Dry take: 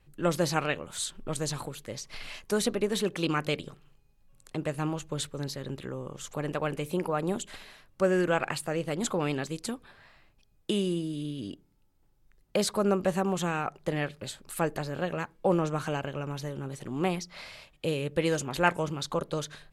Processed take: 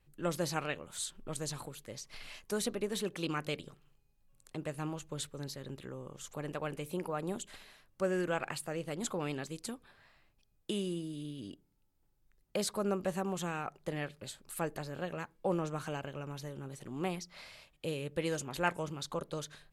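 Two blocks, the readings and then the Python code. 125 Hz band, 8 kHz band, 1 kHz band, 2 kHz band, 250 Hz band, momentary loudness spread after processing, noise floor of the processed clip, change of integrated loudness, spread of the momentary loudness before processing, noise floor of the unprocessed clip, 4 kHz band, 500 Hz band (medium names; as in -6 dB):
-7.5 dB, -5.0 dB, -7.5 dB, -7.5 dB, -7.5 dB, 12 LU, -72 dBFS, -7.5 dB, 13 LU, -65 dBFS, -6.5 dB, -7.5 dB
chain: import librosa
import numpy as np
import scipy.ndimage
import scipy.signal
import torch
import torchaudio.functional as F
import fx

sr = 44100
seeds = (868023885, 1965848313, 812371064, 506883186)

y = fx.high_shelf(x, sr, hz=7500.0, db=5.0)
y = F.gain(torch.from_numpy(y), -7.5).numpy()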